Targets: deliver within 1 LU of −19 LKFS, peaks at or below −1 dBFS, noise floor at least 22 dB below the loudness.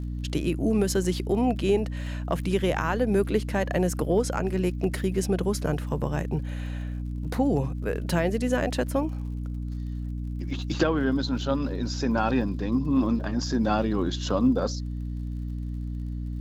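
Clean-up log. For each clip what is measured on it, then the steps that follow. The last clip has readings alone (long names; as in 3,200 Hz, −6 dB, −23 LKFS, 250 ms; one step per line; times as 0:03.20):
crackle rate 56 per second; mains hum 60 Hz; hum harmonics up to 300 Hz; level of the hum −29 dBFS; integrated loudness −27.0 LKFS; sample peak −10.5 dBFS; target loudness −19.0 LKFS
→ click removal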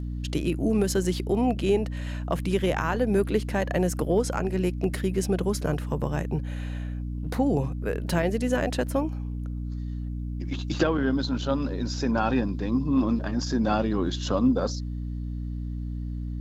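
crackle rate 0.18 per second; mains hum 60 Hz; hum harmonics up to 300 Hz; level of the hum −29 dBFS
→ hum removal 60 Hz, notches 5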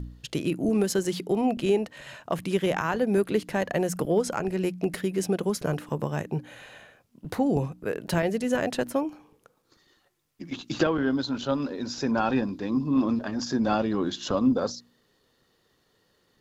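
mains hum none found; integrated loudness −27.5 LKFS; sample peak −10.5 dBFS; target loudness −19.0 LKFS
→ level +8.5 dB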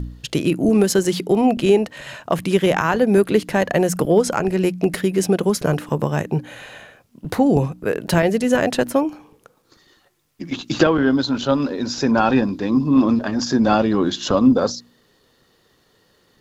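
integrated loudness −19.0 LKFS; sample peak −2.0 dBFS; background noise floor −60 dBFS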